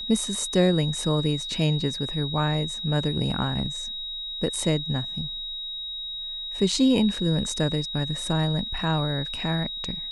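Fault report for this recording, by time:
whine 3.8 kHz -31 dBFS

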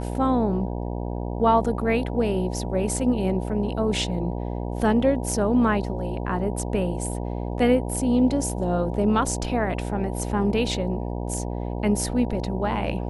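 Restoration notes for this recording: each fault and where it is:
buzz 60 Hz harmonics 16 -29 dBFS

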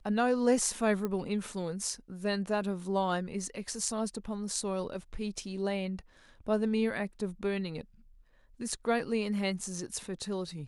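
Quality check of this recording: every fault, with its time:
1.05 s: pop -21 dBFS

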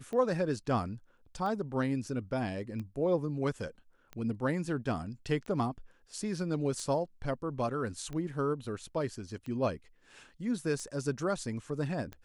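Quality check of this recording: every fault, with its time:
tick 45 rpm -29 dBFS

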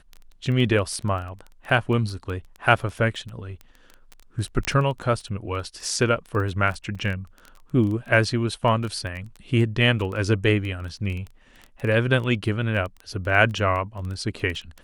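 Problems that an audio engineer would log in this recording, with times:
crackle 14 per s -29 dBFS
4.65 s: pop -8 dBFS
6.95 s: dropout 3.6 ms

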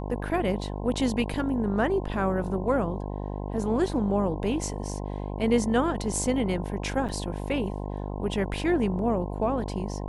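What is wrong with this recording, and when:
buzz 50 Hz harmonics 21 -33 dBFS
7.08–7.09 s: dropout 7.2 ms

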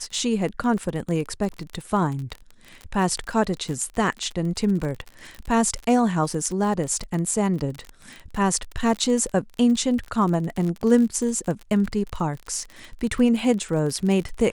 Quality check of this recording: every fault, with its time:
crackle 38 per s -28 dBFS

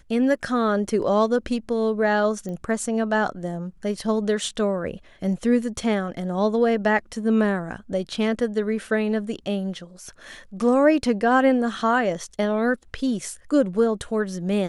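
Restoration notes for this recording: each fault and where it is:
2.49 s: pop -23 dBFS

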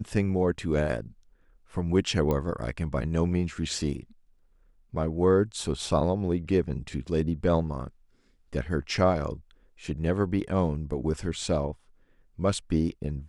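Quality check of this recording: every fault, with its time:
2.31 s: pop -16 dBFS

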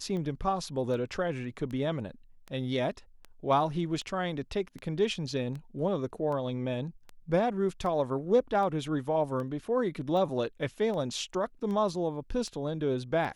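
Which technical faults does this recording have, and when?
tick 78 rpm -28 dBFS

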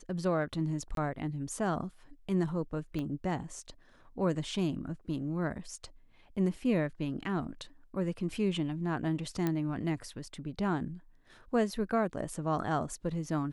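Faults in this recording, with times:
0.95–0.97 s: dropout 22 ms
2.99 s: pop -25 dBFS
9.47 s: pop -18 dBFS

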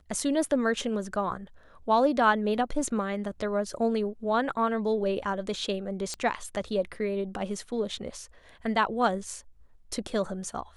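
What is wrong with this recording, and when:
6.14 s: pop -20 dBFS

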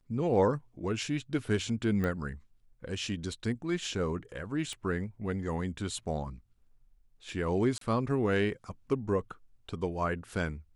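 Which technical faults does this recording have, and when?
2.04 s: pop -21 dBFS
4.73 s: pop
7.78–7.81 s: dropout 33 ms

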